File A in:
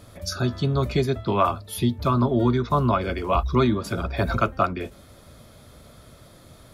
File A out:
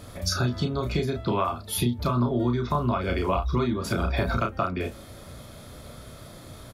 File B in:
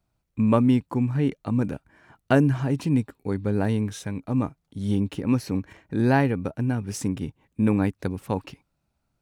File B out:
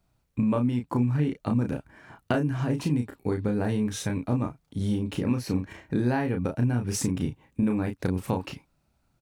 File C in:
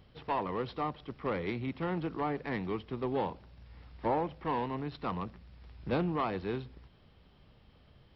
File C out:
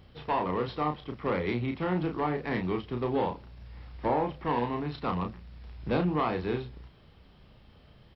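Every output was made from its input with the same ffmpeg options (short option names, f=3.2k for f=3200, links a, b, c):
-filter_complex "[0:a]acompressor=threshold=-26dB:ratio=12,asplit=2[a][b];[b]adelay=33,volume=-5dB[c];[a][c]amix=inputs=2:normalize=0,volume=3.5dB"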